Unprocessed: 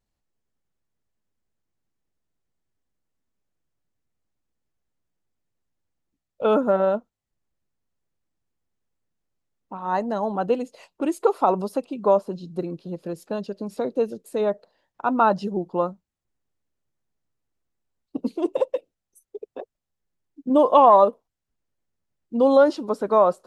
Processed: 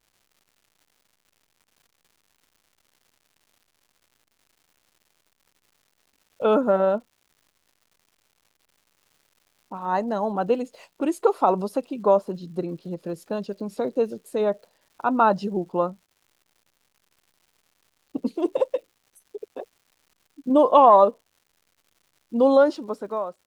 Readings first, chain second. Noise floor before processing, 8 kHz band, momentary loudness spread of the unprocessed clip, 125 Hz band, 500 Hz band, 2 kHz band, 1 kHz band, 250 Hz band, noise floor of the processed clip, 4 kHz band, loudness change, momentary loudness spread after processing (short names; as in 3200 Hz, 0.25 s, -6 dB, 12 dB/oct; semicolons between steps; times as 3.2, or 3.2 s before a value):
-84 dBFS, n/a, 17 LU, 0.0 dB, -0.5 dB, -0.5 dB, -0.5 dB, 0.0 dB, -73 dBFS, -0.5 dB, -0.5 dB, 17 LU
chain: ending faded out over 0.99 s; crackle 260/s -49 dBFS